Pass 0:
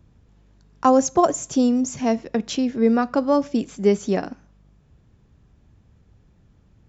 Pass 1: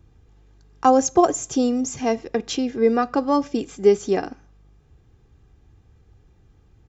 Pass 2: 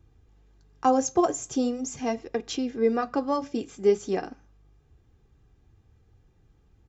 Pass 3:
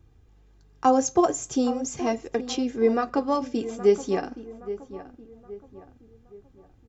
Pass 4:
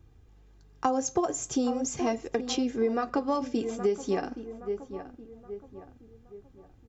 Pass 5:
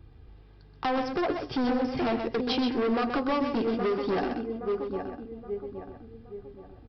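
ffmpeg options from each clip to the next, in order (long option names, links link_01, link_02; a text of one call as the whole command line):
ffmpeg -i in.wav -af "aecho=1:1:2.5:0.49" out.wav
ffmpeg -i in.wav -af "flanger=delay=2.5:depth=6.7:regen=-66:speed=0.42:shape=sinusoidal,volume=-1.5dB" out.wav
ffmpeg -i in.wav -filter_complex "[0:a]asplit=2[link_01][link_02];[link_02]adelay=821,lowpass=frequency=1800:poles=1,volume=-13.5dB,asplit=2[link_03][link_04];[link_04]adelay=821,lowpass=frequency=1800:poles=1,volume=0.43,asplit=2[link_05][link_06];[link_06]adelay=821,lowpass=frequency=1800:poles=1,volume=0.43,asplit=2[link_07][link_08];[link_08]adelay=821,lowpass=frequency=1800:poles=1,volume=0.43[link_09];[link_01][link_03][link_05][link_07][link_09]amix=inputs=5:normalize=0,volume=2dB" out.wav
ffmpeg -i in.wav -af "acompressor=threshold=-23dB:ratio=6" out.wav
ffmpeg -i in.wav -af "aresample=11025,asoftclip=type=hard:threshold=-30dB,aresample=44100,aecho=1:1:128:0.473,volume=5.5dB" out.wav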